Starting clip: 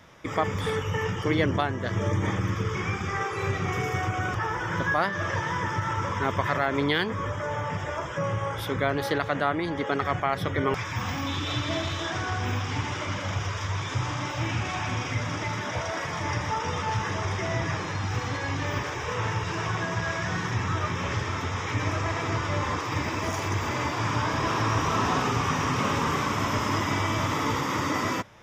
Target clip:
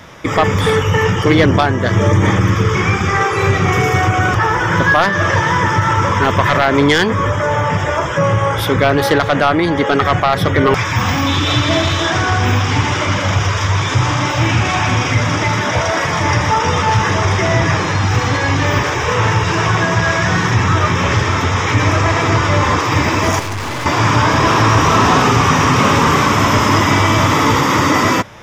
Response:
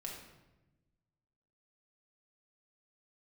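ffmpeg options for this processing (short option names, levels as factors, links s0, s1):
-filter_complex "[0:a]aeval=exprs='0.316*sin(PI/2*1.78*val(0)/0.316)':c=same,asettb=1/sr,asplit=3[s0][s1][s2];[s0]atrim=end=23.394[s3];[s1]atrim=start=23.39:end=23.86,asetpts=PTS-STARTPTS,afade=t=in:d=0.004:c=qsin,afade=t=out:st=0.466:d=0.004:c=qsin,aeval=exprs='(tanh(20*val(0)+0.55)-tanh(0.55))/20':c=same[s4];[s2]atrim=start=23.856[s5];[s3][s4]acrossfade=d=0.004:c1=hsin:c2=qsin[s6];[s6][s5]acrossfade=d=0.004:c1=qsin:c2=hsin,volume=2"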